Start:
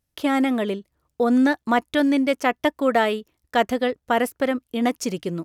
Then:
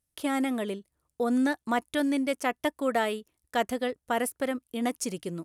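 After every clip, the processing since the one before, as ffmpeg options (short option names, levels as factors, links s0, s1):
-af "equalizer=f=9700:t=o:w=0.77:g=12,volume=0.422"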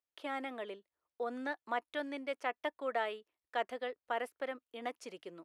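-filter_complex "[0:a]acrossover=split=370 4100:gain=0.0891 1 0.1[s0][s1][s2];[s0][s1][s2]amix=inputs=3:normalize=0,volume=0.447"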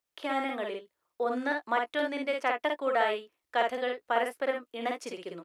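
-af "aecho=1:1:52|69:0.668|0.178,volume=2.24"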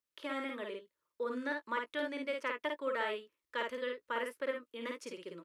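-af "asuperstop=centerf=740:order=4:qfactor=3,volume=0.501"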